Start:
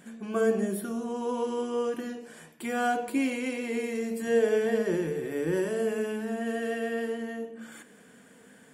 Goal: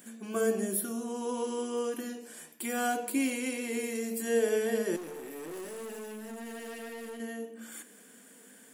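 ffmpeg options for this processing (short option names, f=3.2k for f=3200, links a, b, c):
-filter_complex "[0:a]aemphasis=mode=production:type=75kf,asettb=1/sr,asplit=3[a][b][c];[a]atrim=end=4.964[d];[b]atrim=start=4.96:end=7.2,asetpts=PTS-STARTPTS,afade=t=in:d=0.004:c=qsin,afade=t=out:st=2.236:d=0.004:c=qsin,aeval=exprs='(tanh(56.2*val(0)+0.75)-tanh(0.75))/56.2':c=same[e];[c]atrim=start=7.196[f];[d][e]acrossfade=d=0.004:c1=hsin:c2=qsin[g];[g][f]acrossfade=d=0.004:c1=qsin:c2=hsin,lowshelf=f=160:t=q:w=1.5:g=-12.5,volume=-5dB"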